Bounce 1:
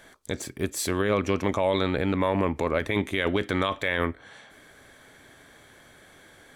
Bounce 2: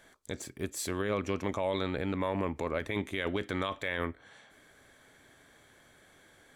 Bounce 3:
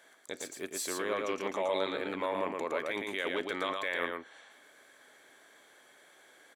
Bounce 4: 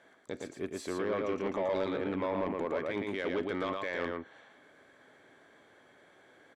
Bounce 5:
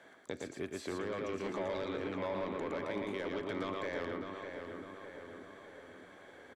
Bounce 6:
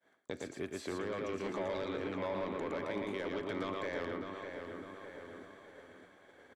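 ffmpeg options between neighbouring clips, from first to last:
-af "equalizer=f=7.2k:w=4.2:g=2.5,volume=-7.5dB"
-filter_complex "[0:a]highpass=380,asplit=2[a][b];[b]aecho=0:1:115:0.668[c];[a][c]amix=inputs=2:normalize=0"
-af "aemphasis=mode=reproduction:type=riaa,asoftclip=type=tanh:threshold=-23.5dB"
-filter_complex "[0:a]acrossover=split=110|1300|4000[a][b][c][d];[a]acompressor=threshold=-58dB:ratio=4[e];[b]acompressor=threshold=-41dB:ratio=4[f];[c]acompressor=threshold=-51dB:ratio=4[g];[d]acompressor=threshold=-58dB:ratio=4[h];[e][f][g][h]amix=inputs=4:normalize=0,asplit=2[i][j];[j]adelay=605,lowpass=f=3.2k:p=1,volume=-6dB,asplit=2[k][l];[l]adelay=605,lowpass=f=3.2k:p=1,volume=0.55,asplit=2[m][n];[n]adelay=605,lowpass=f=3.2k:p=1,volume=0.55,asplit=2[o][p];[p]adelay=605,lowpass=f=3.2k:p=1,volume=0.55,asplit=2[q][r];[r]adelay=605,lowpass=f=3.2k:p=1,volume=0.55,asplit=2[s][t];[t]adelay=605,lowpass=f=3.2k:p=1,volume=0.55,asplit=2[u][v];[v]adelay=605,lowpass=f=3.2k:p=1,volume=0.55[w];[i][k][m][o][q][s][u][w]amix=inputs=8:normalize=0,volume=3dB"
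-af "agate=range=-33dB:threshold=-49dB:ratio=3:detection=peak"

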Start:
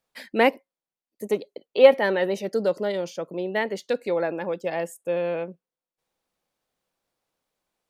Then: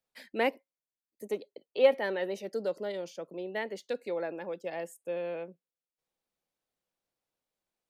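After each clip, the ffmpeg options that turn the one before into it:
-filter_complex "[0:a]acrossover=split=190|1900[a][b][c];[a]acompressor=threshold=-53dB:ratio=6[d];[d][b][c]amix=inputs=3:normalize=0,equalizer=f=1.1k:w=1.5:g=-2.5,volume=-8.5dB"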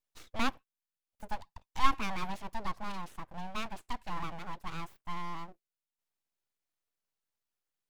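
-filter_complex "[0:a]acrossover=split=680|4500[a][b][c];[c]alimiter=level_in=23dB:limit=-24dB:level=0:latency=1:release=372,volume=-23dB[d];[a][b][d]amix=inputs=3:normalize=0,aeval=exprs='abs(val(0))':c=same"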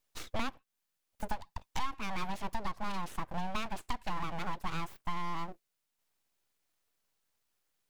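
-af "acompressor=threshold=-38dB:ratio=12,volume=9dB"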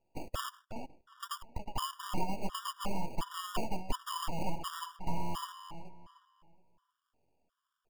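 -filter_complex "[0:a]acrusher=samples=22:mix=1:aa=0.000001,asplit=2[a][b];[b]adelay=365,lowpass=f=4.2k:p=1,volume=-10dB,asplit=2[c][d];[d]adelay=365,lowpass=f=4.2k:p=1,volume=0.33,asplit=2[e][f];[f]adelay=365,lowpass=f=4.2k:p=1,volume=0.33,asplit=2[g][h];[h]adelay=365,lowpass=f=4.2k:p=1,volume=0.33[i];[a][c][e][g][i]amix=inputs=5:normalize=0,afftfilt=real='re*gt(sin(2*PI*1.4*pts/sr)*(1-2*mod(floor(b*sr/1024/960),2)),0)':imag='im*gt(sin(2*PI*1.4*pts/sr)*(1-2*mod(floor(b*sr/1024/960),2)),0)':win_size=1024:overlap=0.75,volume=3dB"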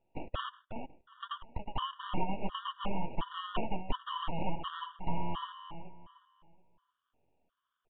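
-af "aresample=8000,aresample=44100,volume=1dB"

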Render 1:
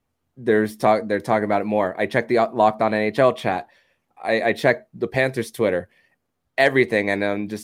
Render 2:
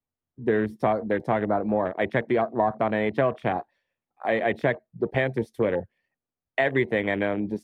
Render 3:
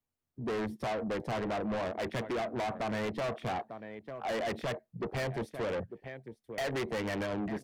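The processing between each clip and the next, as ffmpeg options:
-filter_complex "[0:a]afwtdn=0.0398,highshelf=f=6.5k:g=-6.5,acrossover=split=140[a][b];[b]acompressor=threshold=-21dB:ratio=3[c];[a][c]amix=inputs=2:normalize=0"
-af "volume=14dB,asoftclip=hard,volume=-14dB,aecho=1:1:897:0.106,asoftclip=type=tanh:threshold=-31dB"

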